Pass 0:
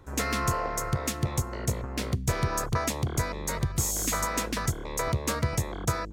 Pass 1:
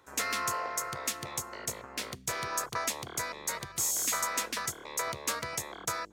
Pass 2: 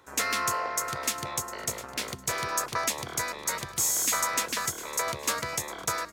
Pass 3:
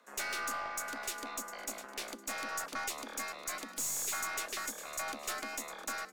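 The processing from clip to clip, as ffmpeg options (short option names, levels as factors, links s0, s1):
-af "highpass=f=1100:p=1"
-af "aecho=1:1:705|1410|2115:0.178|0.048|0.013,volume=1.58"
-af "afreqshift=140,aeval=exprs='(tanh(17.8*val(0)+0.25)-tanh(0.25))/17.8':c=same,volume=0.501"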